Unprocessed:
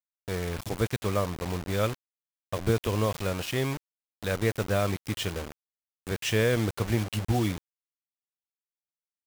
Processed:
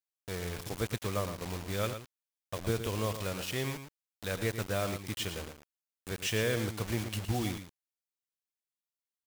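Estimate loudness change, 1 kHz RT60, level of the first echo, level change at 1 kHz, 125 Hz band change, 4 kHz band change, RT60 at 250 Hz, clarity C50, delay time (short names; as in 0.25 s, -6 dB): -5.5 dB, none, -9.5 dB, -5.5 dB, -6.5 dB, -2.5 dB, none, none, 0.113 s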